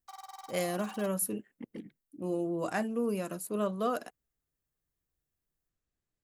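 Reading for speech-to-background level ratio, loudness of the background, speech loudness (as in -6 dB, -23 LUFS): 14.5 dB, -48.5 LUFS, -34.0 LUFS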